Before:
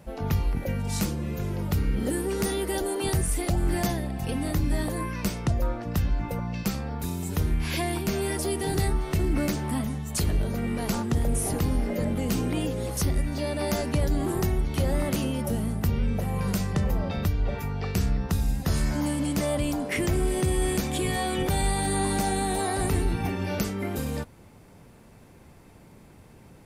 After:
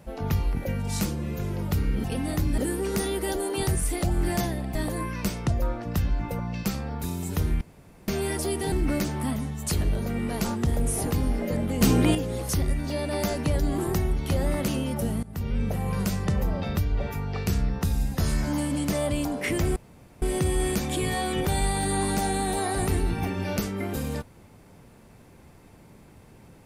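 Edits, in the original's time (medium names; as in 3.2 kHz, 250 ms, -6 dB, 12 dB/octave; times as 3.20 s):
4.21–4.75 s: move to 2.04 s
7.61–8.08 s: room tone
8.72–9.20 s: delete
12.29–12.63 s: gain +7 dB
15.71–16.09 s: fade in, from -20 dB
20.24 s: insert room tone 0.46 s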